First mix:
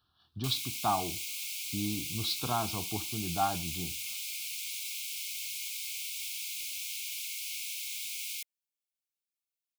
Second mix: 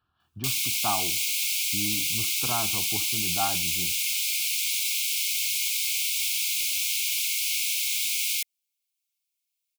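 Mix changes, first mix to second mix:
speech: add resonant high shelf 3000 Hz -7 dB, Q 3; background +11.5 dB

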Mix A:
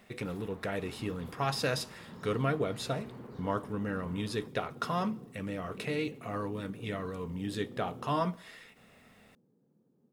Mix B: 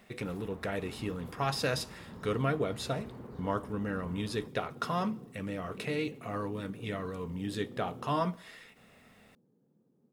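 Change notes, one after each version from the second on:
first sound: add tilt -2 dB/oct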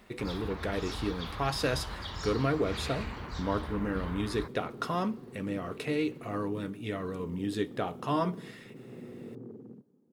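first sound: remove band-pass 300 Hz, Q 1.2; second sound: entry +1.45 s; master: add bell 330 Hz +6 dB 0.7 oct

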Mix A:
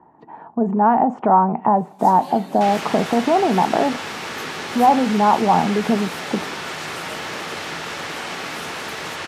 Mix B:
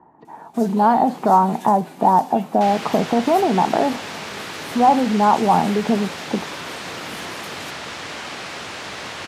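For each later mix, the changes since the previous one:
first sound: entry -1.45 s; second sound: send off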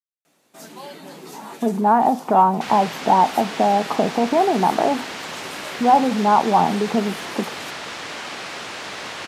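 speech: entry +1.05 s; master: add low shelf 110 Hz -10.5 dB

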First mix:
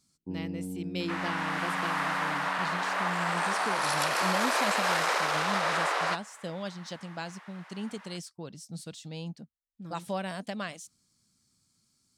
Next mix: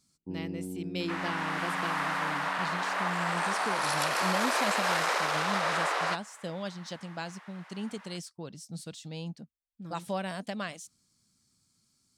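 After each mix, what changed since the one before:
reverb: off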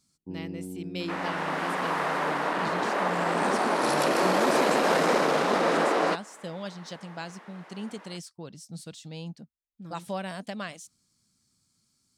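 second sound: remove HPF 990 Hz 12 dB/oct

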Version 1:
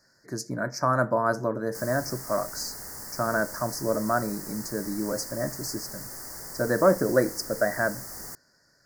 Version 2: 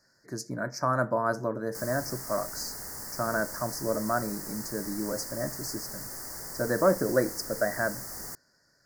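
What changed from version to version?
speech -3.0 dB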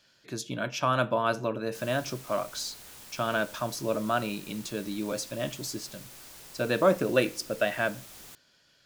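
background -9.5 dB; master: remove elliptic band-stop 1900–4800 Hz, stop band 50 dB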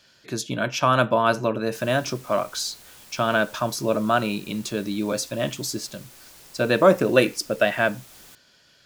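speech +9.5 dB; reverb: off

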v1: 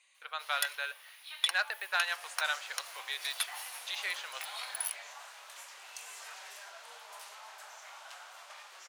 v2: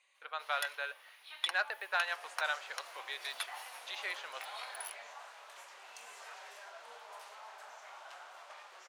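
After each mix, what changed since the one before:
master: add tilt -3 dB/oct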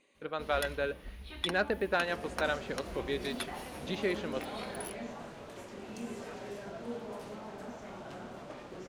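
master: remove HPF 820 Hz 24 dB/oct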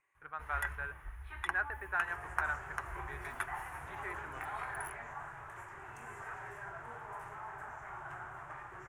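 speech -8.0 dB; master: add EQ curve 140 Hz 0 dB, 210 Hz -27 dB, 370 Hz -9 dB, 520 Hz -17 dB, 850 Hz +4 dB, 1700 Hz +8 dB, 4300 Hz -23 dB, 7300 Hz -5 dB

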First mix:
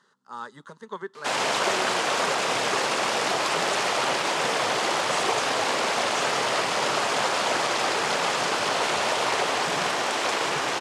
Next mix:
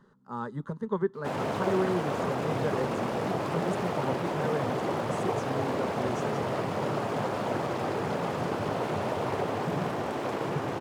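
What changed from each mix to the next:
background -8.0 dB; master: remove weighting filter ITU-R 468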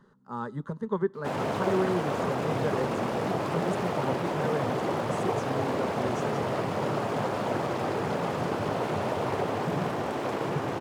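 reverb: on, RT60 0.50 s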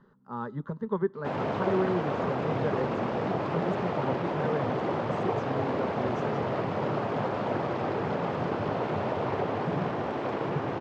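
master: add air absorption 180 m

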